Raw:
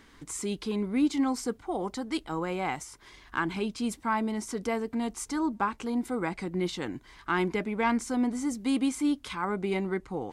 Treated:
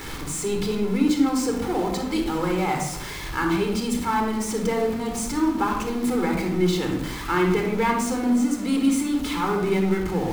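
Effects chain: jump at every zero crossing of -33 dBFS; simulated room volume 2900 m³, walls furnished, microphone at 4.2 m

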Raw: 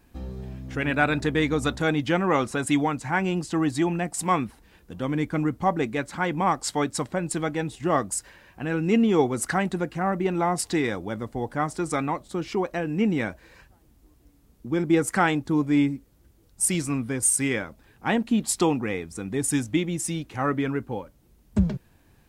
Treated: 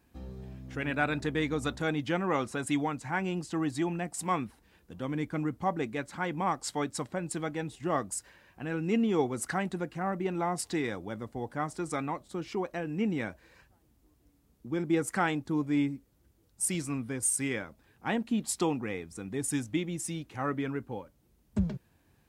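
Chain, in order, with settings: high-pass 50 Hz; trim -7 dB

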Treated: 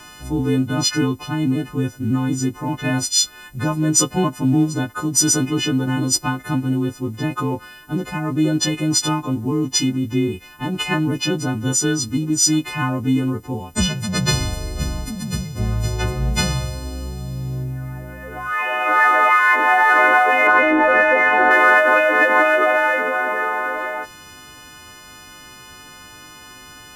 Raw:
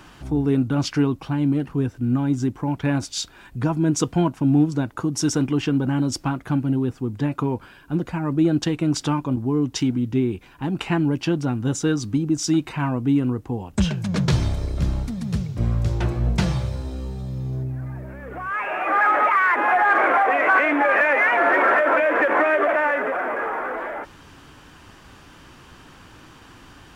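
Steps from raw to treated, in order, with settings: partials quantised in pitch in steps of 3 st; 20.47–21.51 s: tilt EQ -3 dB/octave; trim +1.5 dB

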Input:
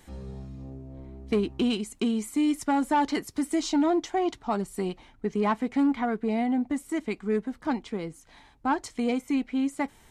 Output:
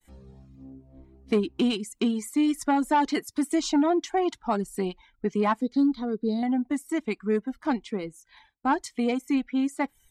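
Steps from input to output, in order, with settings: spectral noise reduction 10 dB; expander -55 dBFS; reverb removal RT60 0.65 s; 5.61–6.43 s: FFT filter 500 Hz 0 dB, 770 Hz -14 dB, 1.2 kHz -11 dB, 2.6 kHz -22 dB, 4.1 kHz +9 dB, 7.7 kHz -10 dB, 12 kHz -3 dB; trim +2 dB

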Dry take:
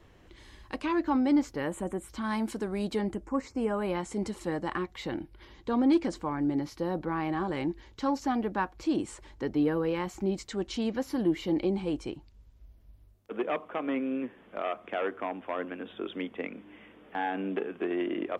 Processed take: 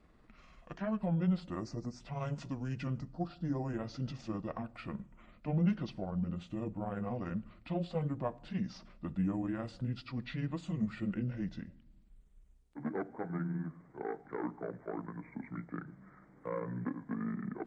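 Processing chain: rotating-head pitch shifter -8.5 st; simulated room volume 3300 m³, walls furnished, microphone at 0.4 m; speed mistake 24 fps film run at 25 fps; trim -5.5 dB

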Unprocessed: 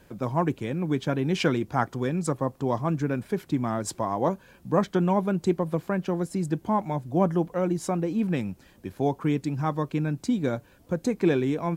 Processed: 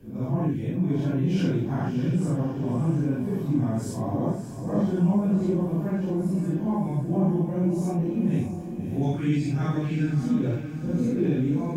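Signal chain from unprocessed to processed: phase randomisation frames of 200 ms; band-stop 1.3 kHz, Q 6.6; time-frequency box 9.03–10.13 s, 1.2–9.3 kHz +10 dB; ten-band graphic EQ 500 Hz -9 dB, 1 kHz -11 dB, 2 kHz -9 dB, 4 kHz -10 dB, 8 kHz -8 dB; in parallel at +0.5 dB: peak limiter -26 dBFS, peak gain reduction 11 dB; on the sum: treble shelf 8.5 kHz -7 dB; on a send: echo that smears into a reverb 620 ms, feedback 45%, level -8.5 dB

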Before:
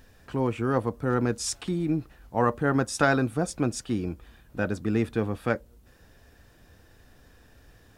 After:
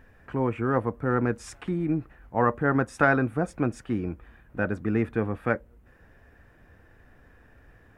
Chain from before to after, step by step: resonant high shelf 2.9 kHz -12 dB, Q 1.5

